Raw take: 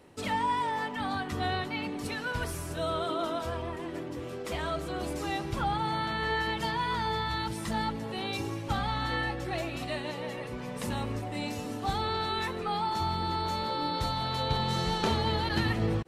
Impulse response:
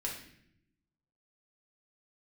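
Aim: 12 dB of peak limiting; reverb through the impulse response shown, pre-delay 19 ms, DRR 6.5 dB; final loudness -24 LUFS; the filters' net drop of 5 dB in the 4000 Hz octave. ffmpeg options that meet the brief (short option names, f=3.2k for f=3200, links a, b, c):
-filter_complex "[0:a]equalizer=f=4k:t=o:g=-6,alimiter=level_in=3dB:limit=-24dB:level=0:latency=1,volume=-3dB,asplit=2[a][b];[1:a]atrim=start_sample=2205,adelay=19[c];[b][c]afir=irnorm=-1:irlink=0,volume=-8.5dB[d];[a][d]amix=inputs=2:normalize=0,volume=11dB"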